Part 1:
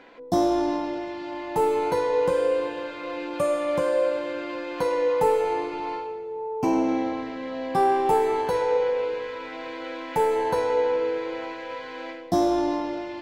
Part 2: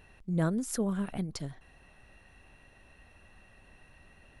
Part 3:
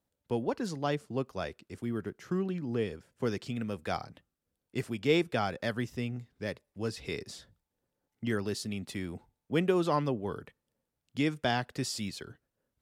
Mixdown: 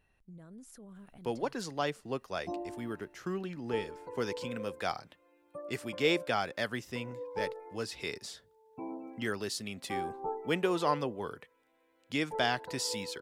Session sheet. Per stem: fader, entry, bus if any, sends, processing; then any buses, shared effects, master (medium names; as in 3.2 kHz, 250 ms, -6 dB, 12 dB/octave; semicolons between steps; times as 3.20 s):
-13.5 dB, 2.15 s, no send, spectral gate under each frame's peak -25 dB strong; upward expansion 2.5:1, over -33 dBFS
-15.0 dB, 0.00 s, no send, peak limiter -29 dBFS, peak gain reduction 11.5 dB
+2.0 dB, 0.95 s, no send, bass shelf 350 Hz -11 dB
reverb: none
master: none